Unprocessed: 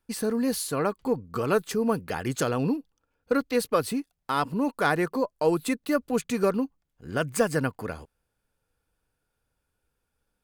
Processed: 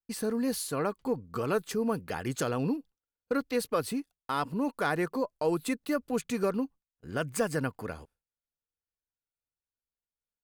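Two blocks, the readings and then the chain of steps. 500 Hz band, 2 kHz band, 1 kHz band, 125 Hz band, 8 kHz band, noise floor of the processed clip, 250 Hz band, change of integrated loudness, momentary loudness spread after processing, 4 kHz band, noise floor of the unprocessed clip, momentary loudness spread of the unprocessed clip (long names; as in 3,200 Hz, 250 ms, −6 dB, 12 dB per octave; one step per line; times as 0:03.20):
−4.5 dB, −5.0 dB, −5.0 dB, −4.0 dB, −4.0 dB, below −85 dBFS, −4.0 dB, −4.5 dB, 6 LU, −4.0 dB, −80 dBFS, 7 LU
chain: noise gate with hold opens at −41 dBFS
in parallel at −3 dB: brickwall limiter −17 dBFS, peak gain reduction 7 dB
on the sum: level −8.5 dB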